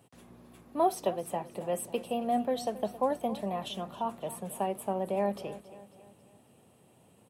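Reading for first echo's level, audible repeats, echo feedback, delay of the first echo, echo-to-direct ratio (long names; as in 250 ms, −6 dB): −16.0 dB, 3, 48%, 272 ms, −15.0 dB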